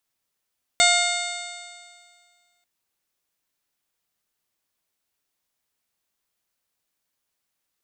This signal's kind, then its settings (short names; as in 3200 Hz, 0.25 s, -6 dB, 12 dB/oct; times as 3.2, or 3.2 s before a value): stretched partials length 1.84 s, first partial 701 Hz, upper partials -4.5/2/-11/1/-3/-13.5/-7/-5/-1 dB, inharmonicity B 0.0031, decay 1.95 s, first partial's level -20 dB